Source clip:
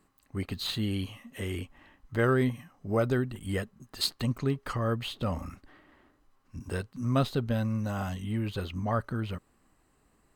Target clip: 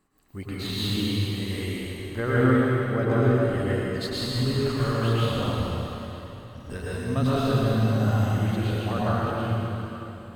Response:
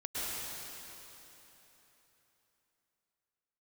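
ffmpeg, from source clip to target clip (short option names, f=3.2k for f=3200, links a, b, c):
-filter_complex "[0:a]asettb=1/sr,asplit=3[a][b][c];[a]atrim=end=2.204[d];[b]atrim=start=2.2:end=4.22,asetpts=PTS-STARTPTS,afade=t=in:d=0.004:c=qsin,afade=t=out:st=2.016:d=0.004:c=qsin,highshelf=f=4.9k:g=-9[e];[c]atrim=start=4.216[f];[d][e]acrossfade=d=0.004:c1=hsin:c2=qsin[g];[g][f]acrossfade=d=0.004:c1=qsin:c2=hsin[h];[1:a]atrim=start_sample=2205[i];[h][i]afir=irnorm=-1:irlink=0,volume=1.5dB"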